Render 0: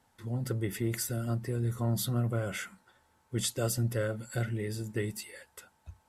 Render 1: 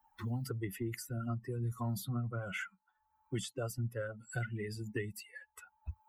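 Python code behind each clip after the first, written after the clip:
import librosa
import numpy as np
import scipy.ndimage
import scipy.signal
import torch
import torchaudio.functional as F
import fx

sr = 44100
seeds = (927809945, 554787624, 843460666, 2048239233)

y = fx.bin_expand(x, sr, power=2.0)
y = fx.peak_eq(y, sr, hz=1300.0, db=4.0, octaves=0.77)
y = fx.band_squash(y, sr, depth_pct=100)
y = y * librosa.db_to_amplitude(-2.5)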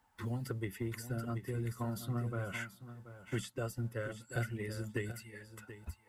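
y = fx.bin_compress(x, sr, power=0.6)
y = fx.echo_feedback(y, sr, ms=732, feedback_pct=18, wet_db=-9)
y = fx.upward_expand(y, sr, threshold_db=-55.0, expansion=1.5)
y = y * librosa.db_to_amplitude(-1.0)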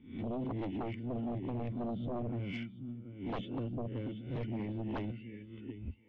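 y = fx.spec_swells(x, sr, rise_s=0.46)
y = fx.formant_cascade(y, sr, vowel='i')
y = fx.fold_sine(y, sr, drive_db=12, ceiling_db=-32.0)
y = y * librosa.db_to_amplitude(-1.5)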